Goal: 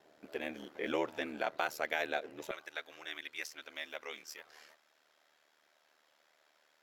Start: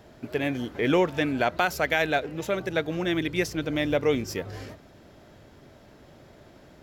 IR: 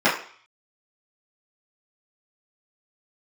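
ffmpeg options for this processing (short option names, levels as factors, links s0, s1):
-af "asetnsamples=n=441:p=0,asendcmd='2.51 highpass f 1100',highpass=360,aeval=exprs='val(0)*sin(2*PI*38*n/s)':c=same,volume=0.422"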